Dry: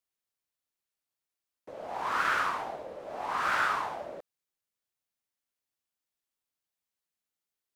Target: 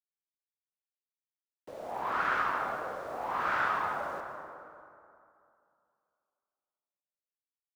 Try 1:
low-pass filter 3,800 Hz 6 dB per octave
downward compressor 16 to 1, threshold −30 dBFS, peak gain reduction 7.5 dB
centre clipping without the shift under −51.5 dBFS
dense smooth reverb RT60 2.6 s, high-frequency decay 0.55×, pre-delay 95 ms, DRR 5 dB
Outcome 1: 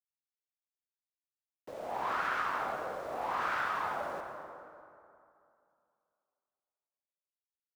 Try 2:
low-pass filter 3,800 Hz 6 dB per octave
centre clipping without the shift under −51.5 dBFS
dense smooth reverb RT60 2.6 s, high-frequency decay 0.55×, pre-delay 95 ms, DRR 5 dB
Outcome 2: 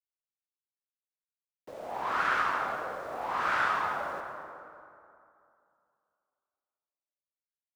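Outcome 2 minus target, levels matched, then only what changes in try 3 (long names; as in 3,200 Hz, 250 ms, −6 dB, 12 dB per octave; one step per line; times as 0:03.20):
4,000 Hz band +3.0 dB
change: low-pass filter 1,600 Hz 6 dB per octave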